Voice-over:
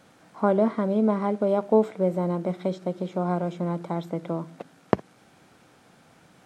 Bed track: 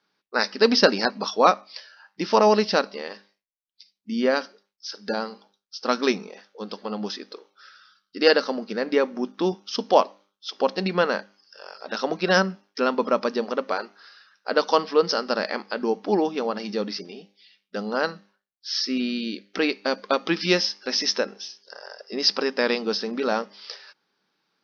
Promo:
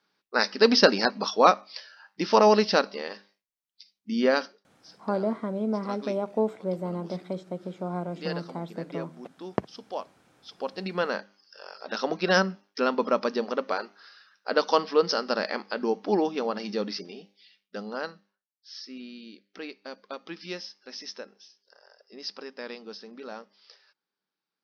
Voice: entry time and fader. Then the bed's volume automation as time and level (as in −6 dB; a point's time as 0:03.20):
4.65 s, −6.0 dB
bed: 0:04.47 −1 dB
0:04.75 −17 dB
0:10.10 −17 dB
0:11.33 −2.5 dB
0:17.47 −2.5 dB
0:18.57 −16 dB